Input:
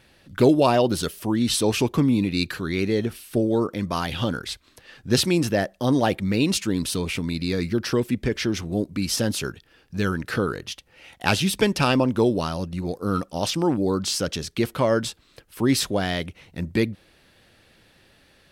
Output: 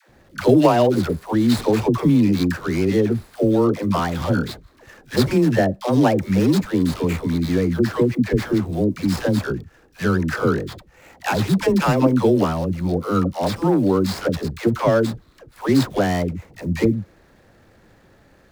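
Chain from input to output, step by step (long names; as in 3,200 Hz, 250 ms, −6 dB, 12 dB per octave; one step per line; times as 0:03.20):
running median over 15 samples
in parallel at +3 dB: brickwall limiter −17 dBFS, peak gain reduction 11 dB
on the sum: log-companded quantiser 8 bits
all-pass dispersion lows, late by 97 ms, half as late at 450 Hz
level −1 dB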